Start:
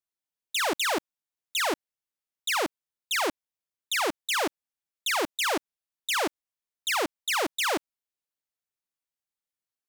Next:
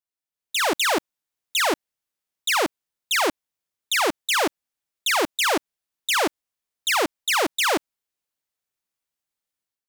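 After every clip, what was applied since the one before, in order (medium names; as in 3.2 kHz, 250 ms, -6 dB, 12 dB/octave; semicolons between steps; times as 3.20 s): level rider gain up to 8 dB; trim -2.5 dB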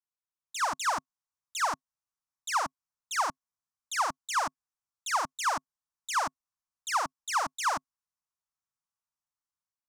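FFT filter 150 Hz 0 dB, 260 Hz -8 dB, 380 Hz -28 dB, 690 Hz -4 dB, 1.1 kHz +5 dB, 2.2 kHz -11 dB, 3.5 kHz -13 dB, 5.7 kHz -1 dB, 10 kHz -7 dB, 15 kHz -17 dB; trim -5 dB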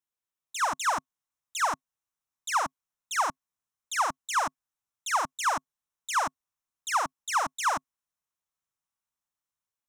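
band-stop 4.6 kHz, Q 5.1; trim +2 dB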